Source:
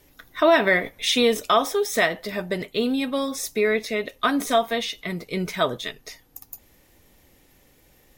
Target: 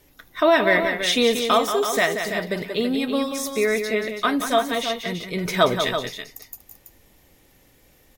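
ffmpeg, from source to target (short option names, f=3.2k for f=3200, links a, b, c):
-filter_complex "[0:a]asettb=1/sr,asplit=3[a][b][c];[a]atrim=end=1.564[d];[b]atrim=start=1.56:end=2.06,asetpts=PTS-STARTPTS,afade=t=in:d=0.004:c=qsin,afade=t=out:st=0.496:d=0.004:c=qsin,aeval=exprs='val(0)+0.00398*sin(2*PI*7300*n/s)':c=same[e];[c]atrim=start=2.056[f];[d][e]acrossfade=d=0.004:c1=hsin:c2=qsin[g];[g][f]acrossfade=d=0.004:c1=qsin:c2=hsin,asettb=1/sr,asplit=3[h][i][j];[h]atrim=end=5.454[k];[i]atrim=start=5.45:end=6.04,asetpts=PTS-STARTPTS,afade=t=in:d=0.004:c=qsin,afade=t=out:st=0.586:d=0.004:c=qsin,acontrast=29[l];[j]atrim=start=6.036[m];[k][l]acrossfade=d=0.004:c1=hsin:c2=qsin[n];[n][m]acrossfade=d=0.004:c1=qsin:c2=hsin,aecho=1:1:181|330:0.398|0.376"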